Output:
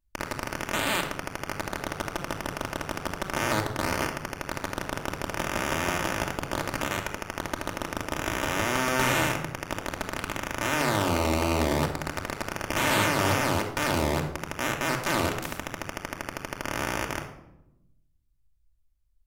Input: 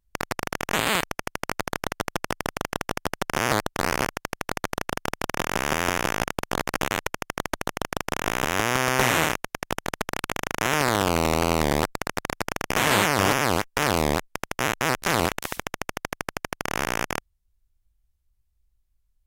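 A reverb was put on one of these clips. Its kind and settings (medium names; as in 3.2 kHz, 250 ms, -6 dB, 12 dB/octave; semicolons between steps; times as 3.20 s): simulated room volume 2700 m³, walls furnished, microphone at 2.6 m; trim -5.5 dB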